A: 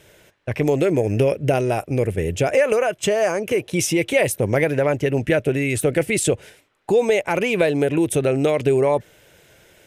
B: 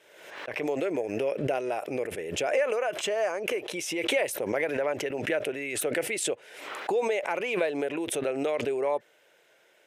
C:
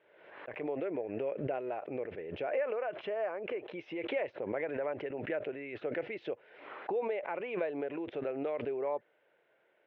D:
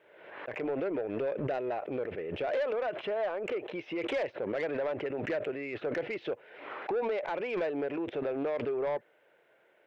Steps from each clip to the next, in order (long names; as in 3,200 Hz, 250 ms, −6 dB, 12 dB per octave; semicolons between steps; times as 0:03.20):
high-pass filter 470 Hz 12 dB per octave; high-shelf EQ 4,600 Hz −9.5 dB; background raised ahead of every attack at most 55 dB per second; level −7 dB
Gaussian smoothing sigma 3.4 samples; level −6.5 dB
soft clipping −31.5 dBFS, distortion −15 dB; level +5.5 dB